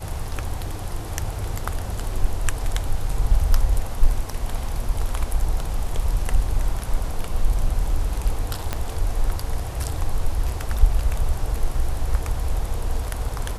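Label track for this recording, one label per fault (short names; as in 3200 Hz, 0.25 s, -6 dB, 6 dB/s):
8.730000	8.730000	pop -10 dBFS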